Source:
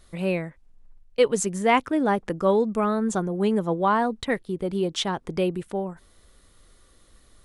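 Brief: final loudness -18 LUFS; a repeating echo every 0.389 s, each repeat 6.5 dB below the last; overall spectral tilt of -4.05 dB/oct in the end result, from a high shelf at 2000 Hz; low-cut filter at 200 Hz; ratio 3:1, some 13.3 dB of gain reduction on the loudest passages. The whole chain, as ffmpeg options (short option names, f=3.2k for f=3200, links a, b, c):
-af "highpass=200,highshelf=f=2k:g=3.5,acompressor=threshold=-32dB:ratio=3,aecho=1:1:389|778|1167|1556|1945|2334:0.473|0.222|0.105|0.0491|0.0231|0.0109,volume=15.5dB"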